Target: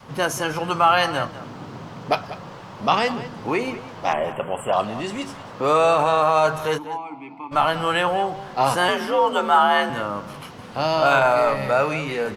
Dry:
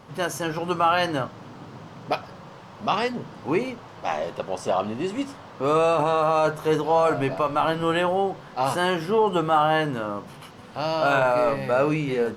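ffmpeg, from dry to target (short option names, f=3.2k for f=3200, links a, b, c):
-filter_complex "[0:a]asettb=1/sr,asplit=3[a][b][c];[a]atrim=end=8.884[d];[b]atrim=start=8.88:end=9.9,asetpts=PTS-STARTPTS,afade=t=in:d=0.004:c=qsin,afade=t=out:st=1.016:d=0.004:c=qsin,afreqshift=63[e];[c]atrim=start=9.896[f];[d][e]acrossfade=d=0.004:c1=hsin:c2=qsin[g];[g][f]acrossfade=d=0.004:c1=qsin:c2=hsin,acrossover=split=450|1800[h][i][j];[h]alimiter=level_in=3.5dB:limit=-24dB:level=0:latency=1,volume=-3.5dB[k];[k][i][j]amix=inputs=3:normalize=0,asettb=1/sr,asplit=3[l][m][n];[l]atrim=end=4.134[o];[m]atrim=start=4.13:end=4.73,asetpts=PTS-STARTPTS,afade=t=in:d=0.004:c=qsin,afade=t=out:st=0.596:d=0.004:c=qsin,asuperstop=centerf=5000:order=20:qfactor=1.2[p];[n]atrim=start=4.726[q];[o][p]acrossfade=d=0.004:c1=hsin:c2=qsin[r];[r][q]acrossfade=d=0.004:c1=qsin:c2=hsin,adynamicequalizer=threshold=0.0112:dfrequency=360:dqfactor=1:tfrequency=360:tqfactor=1:attack=5:release=100:ratio=0.375:range=3:mode=cutabove:tftype=bell,asplit=3[s][t][u];[s]afade=t=out:st=6.77:d=0.02[v];[t]asplit=3[w][x][y];[w]bandpass=f=300:t=q:w=8,volume=0dB[z];[x]bandpass=f=870:t=q:w=8,volume=-6dB[aa];[y]bandpass=f=2.24k:t=q:w=8,volume=-9dB[ab];[z][aa][ab]amix=inputs=3:normalize=0,afade=t=in:st=6.77:d=0.02,afade=t=out:st=7.51:d=0.02[ac];[u]afade=t=in:st=7.51:d=0.02[ad];[v][ac][ad]amix=inputs=3:normalize=0,asplit=2[ae][af];[af]adelay=192.4,volume=-14dB,highshelf=f=4k:g=-4.33[ag];[ae][ag]amix=inputs=2:normalize=0,volume=5dB"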